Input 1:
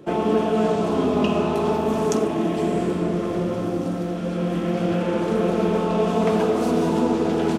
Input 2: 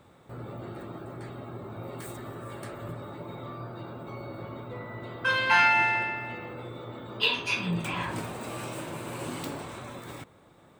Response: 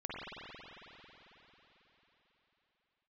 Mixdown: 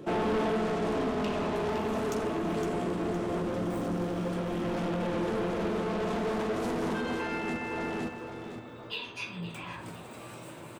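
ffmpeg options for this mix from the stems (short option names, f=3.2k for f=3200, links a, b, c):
-filter_complex "[0:a]asoftclip=type=tanh:threshold=-25.5dB,volume=0dB,asplit=2[a][b];[b]volume=-7dB[c];[1:a]acompressor=mode=upward:threshold=-32dB:ratio=2.5,adelay=1700,volume=-9dB,asplit=2[d][e];[e]volume=-16.5dB[f];[c][f]amix=inputs=2:normalize=0,aecho=0:1:512|1024|1536|2048|2560:1|0.38|0.144|0.0549|0.0209[g];[a][d][g]amix=inputs=3:normalize=0,alimiter=level_in=1dB:limit=-24dB:level=0:latency=1:release=175,volume=-1dB"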